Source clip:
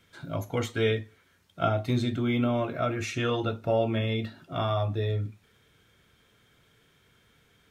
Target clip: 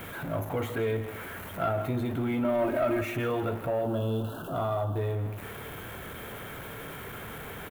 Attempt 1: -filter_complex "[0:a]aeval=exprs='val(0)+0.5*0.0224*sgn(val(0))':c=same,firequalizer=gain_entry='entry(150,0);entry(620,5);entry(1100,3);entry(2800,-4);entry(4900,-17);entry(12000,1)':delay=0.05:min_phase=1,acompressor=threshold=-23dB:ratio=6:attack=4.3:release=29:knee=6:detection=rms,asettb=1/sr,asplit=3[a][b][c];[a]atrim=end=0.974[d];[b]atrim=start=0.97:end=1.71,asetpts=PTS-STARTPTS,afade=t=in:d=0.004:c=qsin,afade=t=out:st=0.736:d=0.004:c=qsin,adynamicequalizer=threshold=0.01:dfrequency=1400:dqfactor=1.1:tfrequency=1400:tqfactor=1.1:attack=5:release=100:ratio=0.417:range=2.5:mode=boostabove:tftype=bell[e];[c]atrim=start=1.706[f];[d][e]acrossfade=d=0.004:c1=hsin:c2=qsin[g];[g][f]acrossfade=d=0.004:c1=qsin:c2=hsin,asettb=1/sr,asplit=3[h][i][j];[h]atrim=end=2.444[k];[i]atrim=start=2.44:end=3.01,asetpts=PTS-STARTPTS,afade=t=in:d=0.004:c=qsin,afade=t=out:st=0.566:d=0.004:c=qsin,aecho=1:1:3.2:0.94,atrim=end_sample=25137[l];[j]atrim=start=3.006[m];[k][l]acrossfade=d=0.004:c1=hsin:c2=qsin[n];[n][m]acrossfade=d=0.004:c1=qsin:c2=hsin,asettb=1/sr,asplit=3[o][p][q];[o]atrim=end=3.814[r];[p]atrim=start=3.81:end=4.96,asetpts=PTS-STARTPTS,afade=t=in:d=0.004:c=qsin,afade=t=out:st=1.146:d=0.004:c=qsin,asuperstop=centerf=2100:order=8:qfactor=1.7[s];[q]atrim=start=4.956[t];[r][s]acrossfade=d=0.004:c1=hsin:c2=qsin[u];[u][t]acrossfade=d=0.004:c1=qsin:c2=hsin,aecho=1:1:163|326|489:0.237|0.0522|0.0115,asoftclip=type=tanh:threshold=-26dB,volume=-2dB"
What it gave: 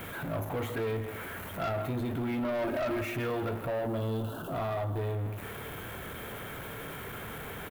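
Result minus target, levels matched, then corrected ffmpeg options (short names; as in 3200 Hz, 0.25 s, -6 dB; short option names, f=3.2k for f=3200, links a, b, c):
soft clip: distortion +11 dB
-filter_complex "[0:a]aeval=exprs='val(0)+0.5*0.0224*sgn(val(0))':c=same,firequalizer=gain_entry='entry(150,0);entry(620,5);entry(1100,3);entry(2800,-4);entry(4900,-17);entry(12000,1)':delay=0.05:min_phase=1,acompressor=threshold=-23dB:ratio=6:attack=4.3:release=29:knee=6:detection=rms,asettb=1/sr,asplit=3[a][b][c];[a]atrim=end=0.974[d];[b]atrim=start=0.97:end=1.71,asetpts=PTS-STARTPTS,afade=t=in:d=0.004:c=qsin,afade=t=out:st=0.736:d=0.004:c=qsin,adynamicequalizer=threshold=0.01:dfrequency=1400:dqfactor=1.1:tfrequency=1400:tqfactor=1.1:attack=5:release=100:ratio=0.417:range=2.5:mode=boostabove:tftype=bell[e];[c]atrim=start=1.706[f];[d][e]acrossfade=d=0.004:c1=hsin:c2=qsin[g];[g][f]acrossfade=d=0.004:c1=qsin:c2=hsin,asettb=1/sr,asplit=3[h][i][j];[h]atrim=end=2.444[k];[i]atrim=start=2.44:end=3.01,asetpts=PTS-STARTPTS,afade=t=in:d=0.004:c=qsin,afade=t=out:st=0.566:d=0.004:c=qsin,aecho=1:1:3.2:0.94,atrim=end_sample=25137[l];[j]atrim=start=3.006[m];[k][l]acrossfade=d=0.004:c1=hsin:c2=qsin[n];[n][m]acrossfade=d=0.004:c1=qsin:c2=hsin,asettb=1/sr,asplit=3[o][p][q];[o]atrim=end=3.814[r];[p]atrim=start=3.81:end=4.96,asetpts=PTS-STARTPTS,afade=t=in:d=0.004:c=qsin,afade=t=out:st=1.146:d=0.004:c=qsin,asuperstop=centerf=2100:order=8:qfactor=1.7[s];[q]atrim=start=4.956[t];[r][s]acrossfade=d=0.004:c1=hsin:c2=qsin[u];[u][t]acrossfade=d=0.004:c1=qsin:c2=hsin,aecho=1:1:163|326|489:0.237|0.0522|0.0115,asoftclip=type=tanh:threshold=-16.5dB,volume=-2dB"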